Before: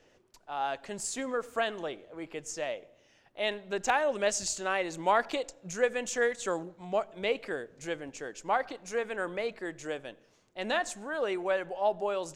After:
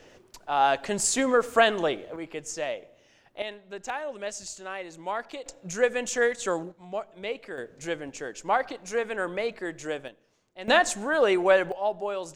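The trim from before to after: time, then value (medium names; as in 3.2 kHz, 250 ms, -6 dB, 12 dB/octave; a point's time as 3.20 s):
+10.5 dB
from 2.16 s +3.5 dB
from 3.42 s -6 dB
from 5.46 s +4 dB
from 6.72 s -3 dB
from 7.58 s +4 dB
from 10.08 s -3.5 dB
from 10.68 s +9.5 dB
from 11.72 s +0.5 dB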